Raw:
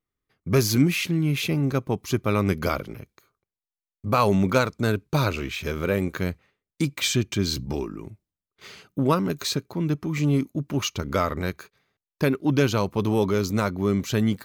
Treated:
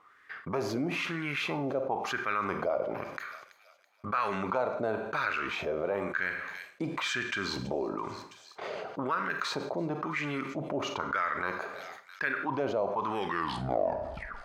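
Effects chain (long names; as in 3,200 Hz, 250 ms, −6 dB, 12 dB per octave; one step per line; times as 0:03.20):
turntable brake at the end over 1.31 s
LFO wah 1 Hz 600–1,700 Hz, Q 4.4
on a send: delay with a high-pass on its return 330 ms, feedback 37%, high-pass 5,000 Hz, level −19 dB
on the sum: four-comb reverb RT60 0.46 s, combs from 32 ms, DRR 12 dB
envelope flattener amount 70%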